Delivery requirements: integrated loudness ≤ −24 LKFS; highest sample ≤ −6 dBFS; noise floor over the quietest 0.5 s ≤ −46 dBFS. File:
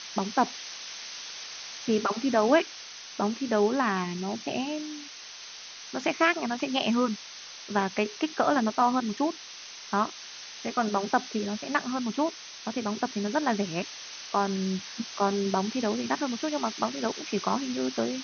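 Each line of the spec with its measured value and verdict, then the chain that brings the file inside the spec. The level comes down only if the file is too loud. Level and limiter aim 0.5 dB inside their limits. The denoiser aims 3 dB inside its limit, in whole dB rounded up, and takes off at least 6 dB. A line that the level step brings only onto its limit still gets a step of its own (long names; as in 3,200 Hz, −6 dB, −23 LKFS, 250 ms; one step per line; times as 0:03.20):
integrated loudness −29.0 LKFS: in spec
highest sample −9.0 dBFS: in spec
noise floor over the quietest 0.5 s −44 dBFS: out of spec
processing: broadband denoise 6 dB, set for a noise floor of −44 dBFS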